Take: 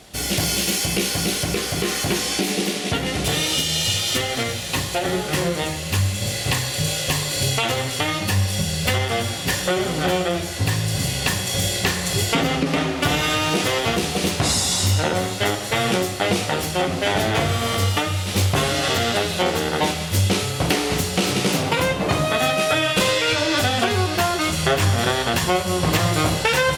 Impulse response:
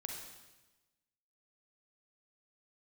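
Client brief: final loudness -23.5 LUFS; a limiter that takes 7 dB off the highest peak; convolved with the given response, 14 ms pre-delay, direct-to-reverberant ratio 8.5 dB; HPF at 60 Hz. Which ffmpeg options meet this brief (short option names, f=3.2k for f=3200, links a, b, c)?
-filter_complex "[0:a]highpass=60,alimiter=limit=-11dB:level=0:latency=1,asplit=2[a][b];[1:a]atrim=start_sample=2205,adelay=14[c];[b][c]afir=irnorm=-1:irlink=0,volume=-7dB[d];[a][d]amix=inputs=2:normalize=0,volume=-2.5dB"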